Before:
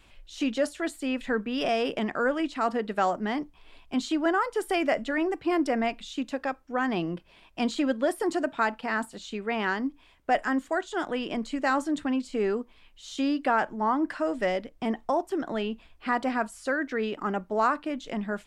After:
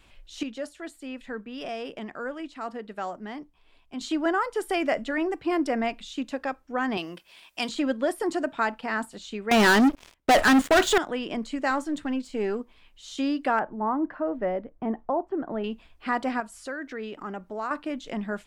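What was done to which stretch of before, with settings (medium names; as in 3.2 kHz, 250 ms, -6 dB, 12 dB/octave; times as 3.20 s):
0.43–4.01 s: gain -8 dB
6.97–7.69 s: tilt EQ +4 dB/octave
9.51–10.98 s: waveshaping leveller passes 5
11.71–12.60 s: partial rectifier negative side -3 dB
13.59–15.64 s: low-pass 1.2 kHz
16.40–17.71 s: compression 1.5:1, threshold -42 dBFS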